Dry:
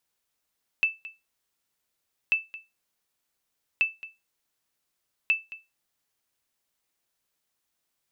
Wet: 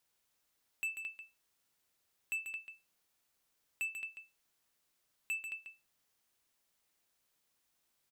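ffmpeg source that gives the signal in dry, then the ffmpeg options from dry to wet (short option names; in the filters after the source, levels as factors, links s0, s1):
-f lavfi -i "aevalsrc='0.188*(sin(2*PI*2640*mod(t,1.49))*exp(-6.91*mod(t,1.49)/0.22)+0.133*sin(2*PI*2640*max(mod(t,1.49)-0.22,0))*exp(-6.91*max(mod(t,1.49)-0.22,0)/0.22))':d=5.96:s=44100"
-filter_complex "[0:a]alimiter=limit=0.106:level=0:latency=1:release=289,asoftclip=type=tanh:threshold=0.0211,asplit=2[s0][s1];[s1]aecho=0:1:140:0.447[s2];[s0][s2]amix=inputs=2:normalize=0"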